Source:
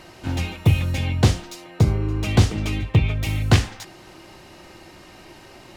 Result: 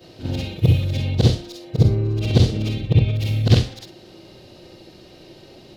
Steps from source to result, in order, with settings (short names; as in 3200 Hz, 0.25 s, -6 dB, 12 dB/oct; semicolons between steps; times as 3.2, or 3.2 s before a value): short-time reversal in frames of 0.132 s; graphic EQ 125/250/500/1000/2000/4000/8000 Hz +7/+3/+9/-7/-5/+10/-6 dB; gain -1 dB